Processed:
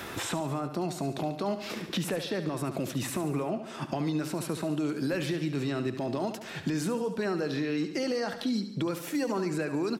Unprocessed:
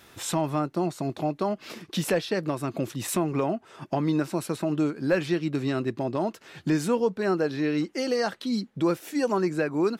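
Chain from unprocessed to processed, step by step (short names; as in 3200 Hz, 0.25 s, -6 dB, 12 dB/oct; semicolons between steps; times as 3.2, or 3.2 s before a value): limiter -23 dBFS, peak gain reduction 9 dB; 4.89–5.49 high shelf 11000 Hz +11.5 dB; on a send: feedback echo 71 ms, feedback 51%, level -11 dB; on the sum: three-band squash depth 70%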